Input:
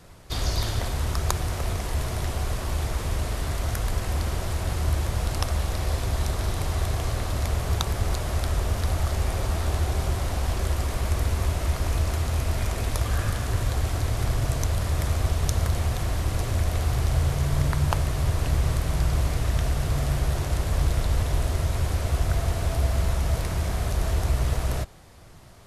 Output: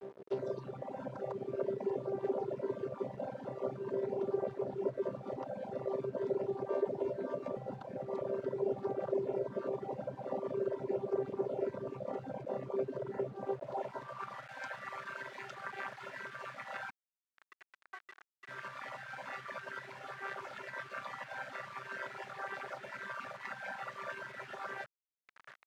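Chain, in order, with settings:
channel vocoder with a chord as carrier bare fifth, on C3
downward compressor 2.5 to 1, threshold −32 dBFS, peak gain reduction 7 dB
0:06.68–0:07.57: double-tracking delay 12 ms −2.5 dB
reverb reduction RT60 0.91 s
0:16.90–0:18.49: stiff-string resonator 360 Hz, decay 0.27 s, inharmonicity 0.008
reverb reduction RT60 1.6 s
brickwall limiter −35.5 dBFS, peak gain reduction 9.5 dB
parametric band 140 Hz −9.5 dB 1.7 octaves
bit reduction 10 bits
band-pass filter sweep 420 Hz → 1,600 Hz, 0:13.31–0:14.48
level +18 dB

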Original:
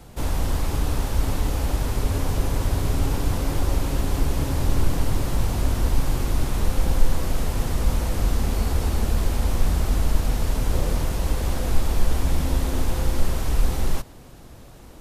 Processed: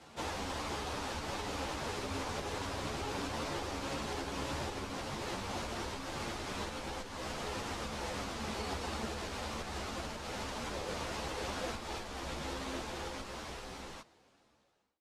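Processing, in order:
fade-out on the ending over 2.89 s
low-pass filter 5,900 Hz 12 dB per octave
downward compressor 6 to 1, threshold −18 dBFS, peak gain reduction 10.5 dB
high-pass filter 590 Hz 6 dB per octave
string-ensemble chorus
level +1 dB

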